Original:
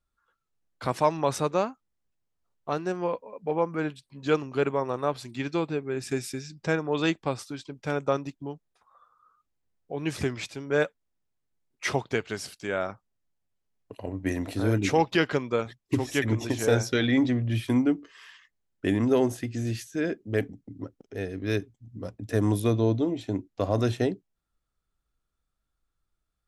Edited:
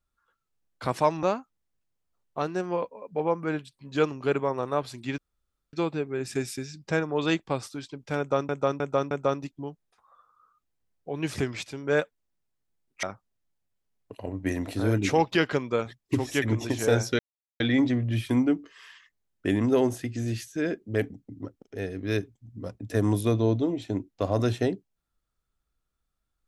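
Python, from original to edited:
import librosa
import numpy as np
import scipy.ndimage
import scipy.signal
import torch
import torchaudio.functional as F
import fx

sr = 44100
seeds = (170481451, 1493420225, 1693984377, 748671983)

y = fx.edit(x, sr, fx.cut(start_s=1.23, length_s=0.31),
    fx.insert_room_tone(at_s=5.49, length_s=0.55),
    fx.repeat(start_s=7.94, length_s=0.31, count=4),
    fx.cut(start_s=11.86, length_s=0.97),
    fx.insert_silence(at_s=16.99, length_s=0.41), tone=tone)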